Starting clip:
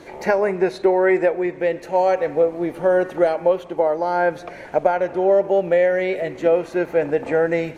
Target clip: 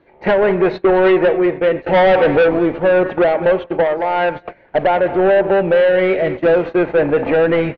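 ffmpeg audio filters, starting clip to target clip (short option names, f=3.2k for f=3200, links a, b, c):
-filter_complex "[0:a]asettb=1/sr,asplit=3[a][b][c];[a]atrim=end=1.864[d];[b]atrim=start=1.86:end=2.59,asetpts=PTS-STARTPTS,afade=t=in:d=0.004:c=qsin,afade=t=out:st=0.726:d=0.004:c=qsin,acontrast=78[e];[c]atrim=start=2.586[f];[d][e]acrossfade=d=0.004:c1=hsin:c2=qsin[g];[g][f]acrossfade=d=0.004:c1=qsin:c2=hsin,asoftclip=type=tanh:threshold=-18dB,asplit=3[h][i][j];[h]afade=t=out:st=3.83:d=0.02[k];[i]lowshelf=f=480:g=-8,afade=t=in:st=3.83:d=0.02,afade=t=out:st=4.35:d=0.02[l];[j]afade=t=in:st=4.35:d=0.02[m];[k][l][m]amix=inputs=3:normalize=0,asettb=1/sr,asplit=3[n][o][p];[n]atrim=end=6.134[q];[o]atrim=start=6.13:end=6.76,asetpts=PTS-STARTPTS,afade=t=in:d=0.004:c=qsin,afade=t=out:st=0.626:d=0.004:c=qsin,acrusher=bits=6:mode=log:mix=0:aa=0.000001[r];[p]atrim=start=6.756[s];[q][r]acrossfade=d=0.004:c1=hsin:c2=qsin[t];[t][s]acrossfade=d=0.004:c1=qsin:c2=hsin,lowpass=f=3.3k:w=0.5412,lowpass=f=3.3k:w=1.3066,aecho=1:1:210|420:0.168|0.0403,agate=range=-22dB:threshold=-31dB:ratio=16:detection=peak,lowshelf=f=120:g=4.5,volume=9dB"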